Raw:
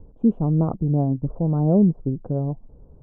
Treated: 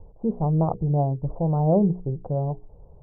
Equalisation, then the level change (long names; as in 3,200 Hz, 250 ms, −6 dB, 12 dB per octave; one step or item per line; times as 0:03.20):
low-pass with resonance 870 Hz, resonance Q 2
parametric band 260 Hz −14 dB 0.47 octaves
mains-hum notches 60/120/180/240/300/360/420/480 Hz
0.0 dB